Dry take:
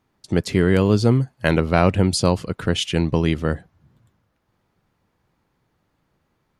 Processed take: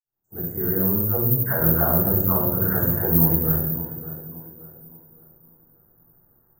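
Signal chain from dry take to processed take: opening faded in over 2.09 s; 1.02–3.25 dispersion lows, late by 0.133 s, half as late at 630 Hz; limiter -14 dBFS, peak gain reduction 9.5 dB; inverse Chebyshev band-stop 2400–5300 Hz, stop band 40 dB; bell 120 Hz +8.5 dB 0.25 oct; tape echo 0.571 s, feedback 41%, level -14 dB, low-pass 1900 Hz; compressor 5:1, threshold -22 dBFS, peak gain reduction 8 dB; shoebox room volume 220 m³, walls mixed, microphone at 4.8 m; careless resampling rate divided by 3×, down filtered, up zero stuff; Doppler distortion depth 0.16 ms; gain -12.5 dB

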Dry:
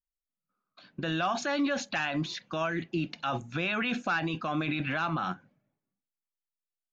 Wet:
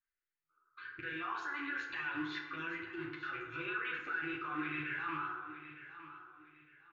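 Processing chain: rattling part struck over -35 dBFS, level -27 dBFS; LFO notch saw up 1.3 Hz 660–2800 Hz; EQ curve 120 Hz 0 dB, 240 Hz -28 dB, 360 Hz +7 dB, 650 Hz -23 dB, 950 Hz -2 dB, 1500 Hz +10 dB, 5800 Hz -27 dB; compressor 2:1, threshold -41 dBFS, peak gain reduction 10.5 dB; limiter -37 dBFS, peak gain reduction 10.5 dB; tilt +2 dB/oct; chorus voices 2, 1 Hz, delay 11 ms, depth 3 ms; feedback echo 0.91 s, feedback 30%, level -13 dB; FDN reverb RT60 1.1 s, low-frequency decay 0.7×, high-frequency decay 0.5×, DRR -0.5 dB; gain +5 dB

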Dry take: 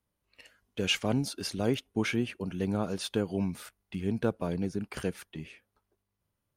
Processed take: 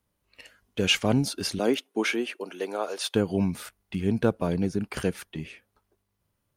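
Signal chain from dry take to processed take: 1.58–3.14 HPF 220 Hz -> 480 Hz 24 dB/oct; gain +5.5 dB

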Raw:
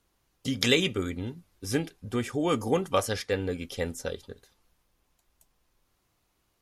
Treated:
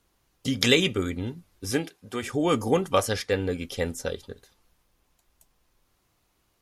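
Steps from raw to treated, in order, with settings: 1.7–2.22 HPF 180 Hz -> 610 Hz 6 dB/oct; gain +3 dB

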